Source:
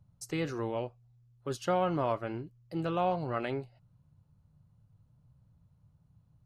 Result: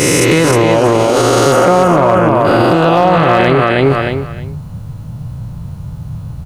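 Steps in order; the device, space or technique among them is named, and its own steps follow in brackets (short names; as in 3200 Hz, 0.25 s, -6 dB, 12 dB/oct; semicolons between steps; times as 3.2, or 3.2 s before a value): spectral swells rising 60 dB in 1.94 s; 1.52–2.45 bell 4300 Hz -14.5 dB 1 oct; feedback echo 0.313 s, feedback 18%, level -5 dB; loud club master (compressor 2.5:1, threshold -32 dBFS, peak gain reduction 7 dB; hard clip -25.5 dBFS, distortion -25 dB; maximiser +35.5 dB); gain -1 dB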